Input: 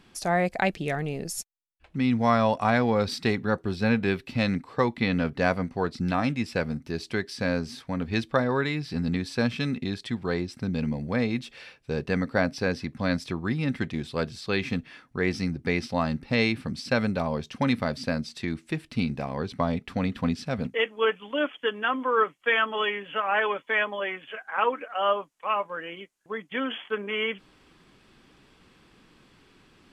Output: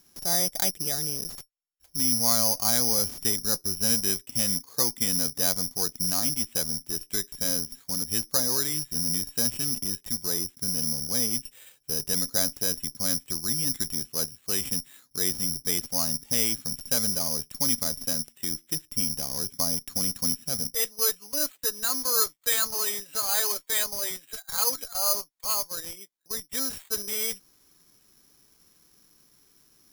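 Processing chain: treble shelf 3.7 kHz -2.5 dB; in parallel at -9 dB: Schmitt trigger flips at -31 dBFS; on the sum: careless resampling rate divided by 8×, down filtered, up zero stuff; trim -11 dB

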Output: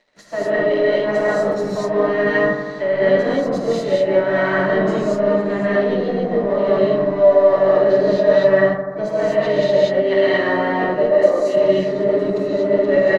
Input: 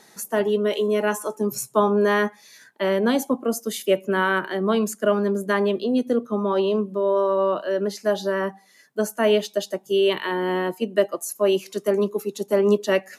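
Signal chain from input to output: treble shelf 7.9 kHz -2 dB; band-stop 820 Hz, Q 24; de-hum 215 Hz, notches 2; reverse; compression 16:1, threshold -31 dBFS, peak gain reduction 19 dB; reverse; crossover distortion -48 dBFS; harmony voices -7 st -11 dB, -5 st -9 dB, +7 st -15 dB; distance through air 160 m; small resonant body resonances 600/1900/4000 Hz, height 14 dB, ringing for 25 ms; on a send: bucket-brigade echo 84 ms, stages 1024, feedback 74%, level -9.5 dB; on the sum: gated-style reverb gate 270 ms rising, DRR -7.5 dB; trim +5 dB

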